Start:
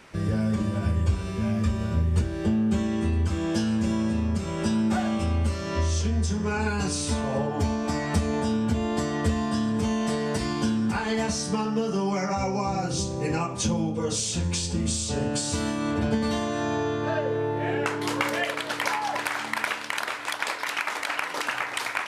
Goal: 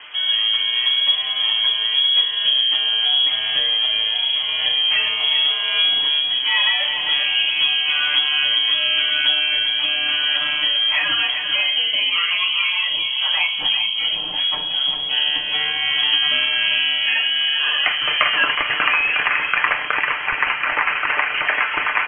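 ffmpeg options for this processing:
-filter_complex "[0:a]lowpass=f=2900:t=q:w=0.5098,lowpass=f=2900:t=q:w=0.6013,lowpass=f=2900:t=q:w=0.9,lowpass=f=2900:t=q:w=2.563,afreqshift=-3400,highshelf=f=2200:g=9,aecho=1:1:6.7:0.47,asplit=2[s0][s1];[s1]aecho=0:1:397:0.398[s2];[s0][s2]amix=inputs=2:normalize=0,acrossover=split=2600[s3][s4];[s4]acompressor=threshold=0.0112:ratio=4:attack=1:release=60[s5];[s3][s5]amix=inputs=2:normalize=0,volume=2.11"

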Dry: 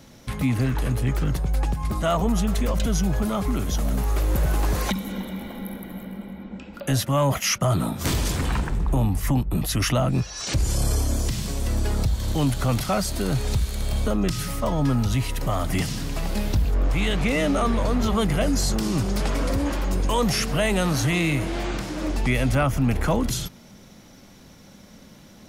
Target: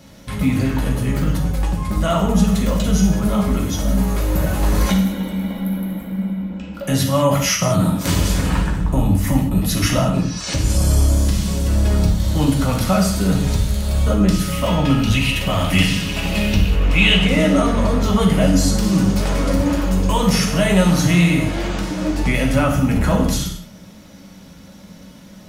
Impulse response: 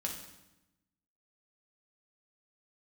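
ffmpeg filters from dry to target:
-filter_complex "[0:a]asettb=1/sr,asplit=3[s0][s1][s2];[s0]atrim=end=14.524[s3];[s1]atrim=start=14.52:end=17.17,asetpts=PTS-STARTPTS,afade=t=in:d=0.004:c=qsin,afade=t=out:st=2.646:d=0.004:c=qsin,equalizer=f=2700:t=o:w=0.71:g=13.5[s4];[s2]atrim=start=17.166[s5];[s3][s4]acrossfade=d=0.004:c1=hsin:c2=qsin[s6];[s6][s5]acrossfade=d=0.004:c1=qsin:c2=hsin[s7];[1:a]atrim=start_sample=2205,afade=t=out:st=0.27:d=0.01,atrim=end_sample=12348[s8];[s7][s8]afir=irnorm=-1:irlink=0,volume=1.5"

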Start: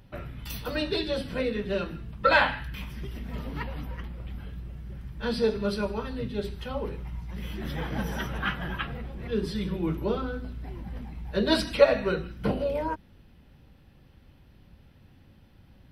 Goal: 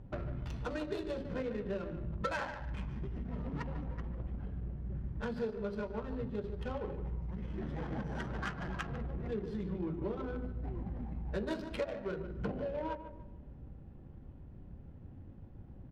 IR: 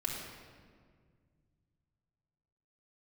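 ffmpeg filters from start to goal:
-filter_complex "[0:a]acompressor=threshold=0.0112:ratio=6,lowpass=f=6700:t=q:w=4.9,asplit=2[s0][s1];[s1]adelay=148,lowpass=f=4900:p=1,volume=0.355,asplit=2[s2][s3];[s3]adelay=148,lowpass=f=4900:p=1,volume=0.36,asplit=2[s4][s5];[s5]adelay=148,lowpass=f=4900:p=1,volume=0.36,asplit=2[s6][s7];[s7]adelay=148,lowpass=f=4900:p=1,volume=0.36[s8];[s0][s2][s4][s6][s8]amix=inputs=5:normalize=0,asplit=2[s9][s10];[1:a]atrim=start_sample=2205[s11];[s10][s11]afir=irnorm=-1:irlink=0,volume=0.15[s12];[s9][s12]amix=inputs=2:normalize=0,adynamicsmooth=sensitivity=6:basefreq=720,volume=1.41"

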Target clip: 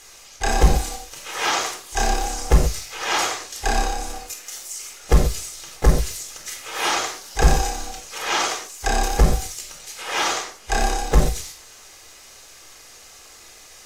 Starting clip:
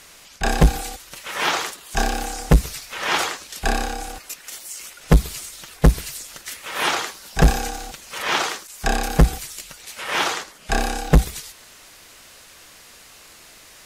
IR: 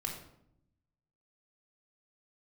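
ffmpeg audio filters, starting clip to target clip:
-filter_complex "[0:a]asplit=2[s0][s1];[s1]asetrate=55563,aresample=44100,atempo=0.793701,volume=0.2[s2];[s0][s2]amix=inputs=2:normalize=0,equalizer=f=160:t=o:w=0.67:g=-10,equalizer=f=630:t=o:w=0.67:g=4,equalizer=f=6300:t=o:w=0.67:g=8[s3];[1:a]atrim=start_sample=2205,atrim=end_sample=6174[s4];[s3][s4]afir=irnorm=-1:irlink=0,volume=0.75"

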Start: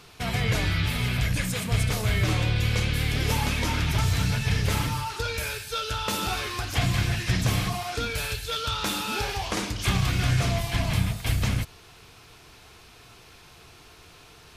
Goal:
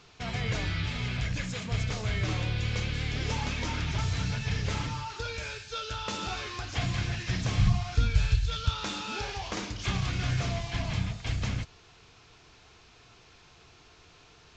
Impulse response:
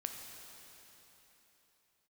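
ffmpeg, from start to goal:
-filter_complex "[0:a]asplit=3[s0][s1][s2];[s0]afade=t=out:st=7.58:d=0.02[s3];[s1]asubboost=boost=10.5:cutoff=130,afade=t=in:st=7.58:d=0.02,afade=t=out:st=8.68:d=0.02[s4];[s2]afade=t=in:st=8.68:d=0.02[s5];[s3][s4][s5]amix=inputs=3:normalize=0,volume=0.501" -ar 16000 -c:a pcm_alaw

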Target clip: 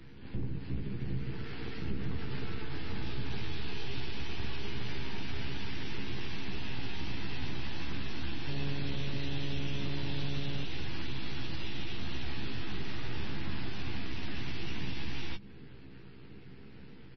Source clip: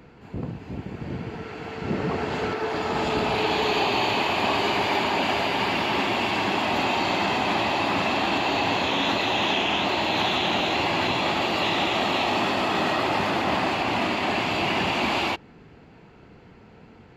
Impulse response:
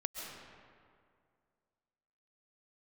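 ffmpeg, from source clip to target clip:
-filter_complex "[0:a]highpass=f=69:p=1[s0];[1:a]atrim=start_sample=2205,atrim=end_sample=4410[s1];[s0][s1]afir=irnorm=-1:irlink=0,aeval=exprs='max(val(0),0)':c=same,equalizer=f=1300:w=0.73:g=-13.5,bandreject=f=50:t=h:w=6,bandreject=f=100:t=h:w=6,bandreject=f=150:t=h:w=6,bandreject=f=200:t=h:w=6,bandreject=f=250:t=h:w=6,bandreject=f=300:t=h:w=6,acompressor=threshold=0.0158:ratio=2,equalizer=f=100:t=o:w=0.67:g=4,equalizer=f=630:t=o:w=0.67:g=-12,equalizer=f=1600:t=o:w=0.67:g=6,equalizer=f=6300:t=o:w=0.67:g=-5,acrossover=split=160[s2][s3];[s3]acompressor=threshold=0.00398:ratio=10[s4];[s2][s4]amix=inputs=2:normalize=0,asplit=2[s5][s6];[s6]adelay=15,volume=0.708[s7];[s5][s7]amix=inputs=2:normalize=0,asplit=3[s8][s9][s10];[s8]afade=t=out:st=8.47:d=0.02[s11];[s9]asplit=6[s12][s13][s14][s15][s16][s17];[s13]adelay=166,afreqshift=-140,volume=0.224[s18];[s14]adelay=332,afreqshift=-280,volume=0.119[s19];[s15]adelay=498,afreqshift=-420,volume=0.0631[s20];[s16]adelay=664,afreqshift=-560,volume=0.0335[s21];[s17]adelay=830,afreqshift=-700,volume=0.0176[s22];[s12][s18][s19][s20][s21][s22]amix=inputs=6:normalize=0,afade=t=in:st=8.47:d=0.02,afade=t=out:st=10.63:d=0.02[s23];[s10]afade=t=in:st=10.63:d=0.02[s24];[s11][s23][s24]amix=inputs=3:normalize=0,volume=2.11" -ar 24000 -c:a libmp3lame -b:a 24k

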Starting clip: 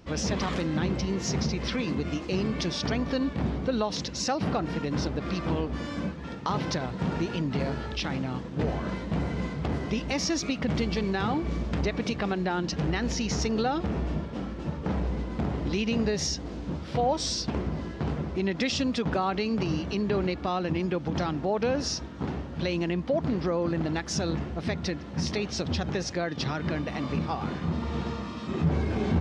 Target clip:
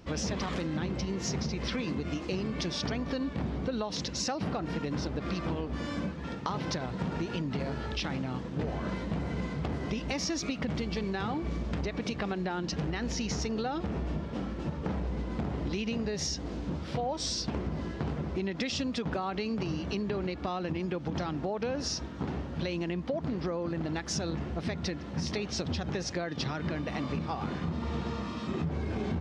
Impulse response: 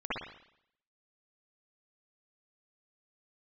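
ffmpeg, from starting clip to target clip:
-af "acompressor=threshold=0.0355:ratio=6"

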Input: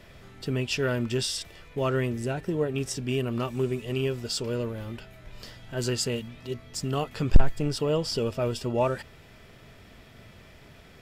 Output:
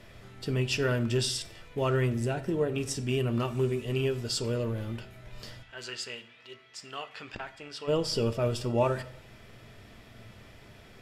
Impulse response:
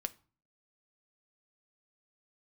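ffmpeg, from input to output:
-filter_complex "[0:a]asplit=3[s0][s1][s2];[s0]afade=t=out:st=5.62:d=0.02[s3];[s1]bandpass=f=2200:t=q:w=0.96:csg=0,afade=t=in:st=5.62:d=0.02,afade=t=out:st=7.87:d=0.02[s4];[s2]afade=t=in:st=7.87:d=0.02[s5];[s3][s4][s5]amix=inputs=3:normalize=0[s6];[1:a]atrim=start_sample=2205,asetrate=25137,aresample=44100[s7];[s6][s7]afir=irnorm=-1:irlink=0,volume=0.708"

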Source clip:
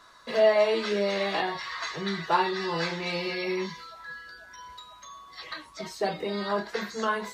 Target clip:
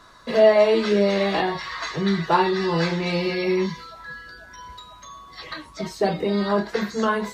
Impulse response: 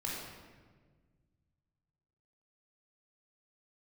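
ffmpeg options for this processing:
-af "lowshelf=f=380:g=10.5,volume=1.41"

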